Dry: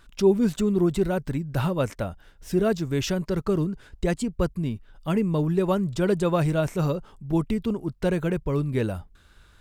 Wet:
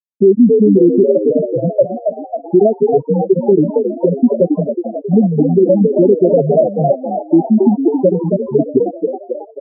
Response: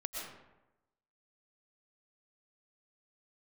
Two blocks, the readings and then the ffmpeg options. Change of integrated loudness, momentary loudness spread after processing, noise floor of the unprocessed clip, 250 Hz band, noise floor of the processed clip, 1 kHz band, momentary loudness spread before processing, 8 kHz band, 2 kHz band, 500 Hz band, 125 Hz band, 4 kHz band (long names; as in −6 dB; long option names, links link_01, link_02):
+12.5 dB, 9 LU, −56 dBFS, +12.0 dB, −37 dBFS, +10.0 dB, 8 LU, below −40 dB, below −35 dB, +14.5 dB, +5.5 dB, below −40 dB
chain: -filter_complex "[0:a]afftfilt=real='re*gte(hypot(re,im),0.562)':imag='im*gte(hypot(re,im),0.562)':win_size=1024:overlap=0.75,equalizer=frequency=660:width_type=o:width=0.27:gain=14.5,acompressor=threshold=-23dB:ratio=8,asuperstop=centerf=1300:order=12:qfactor=0.64,highpass=frequency=200:width=0.5412,highpass=frequency=200:width=1.3066,equalizer=frequency=260:width_type=q:width=4:gain=5,equalizer=frequency=370:width_type=q:width=4:gain=5,equalizer=frequency=1400:width_type=q:width=4:gain=10,lowpass=frequency=2200:width=0.5412,lowpass=frequency=2200:width=1.3066,asplit=8[link_01][link_02][link_03][link_04][link_05][link_06][link_07][link_08];[link_02]adelay=271,afreqshift=54,volume=-8dB[link_09];[link_03]adelay=542,afreqshift=108,volume=-12.6dB[link_10];[link_04]adelay=813,afreqshift=162,volume=-17.2dB[link_11];[link_05]adelay=1084,afreqshift=216,volume=-21.7dB[link_12];[link_06]adelay=1355,afreqshift=270,volume=-26.3dB[link_13];[link_07]adelay=1626,afreqshift=324,volume=-30.9dB[link_14];[link_08]adelay=1897,afreqshift=378,volume=-35.5dB[link_15];[link_01][link_09][link_10][link_11][link_12][link_13][link_14][link_15]amix=inputs=8:normalize=0,alimiter=level_in=19.5dB:limit=-1dB:release=50:level=0:latency=1,volume=-1dB"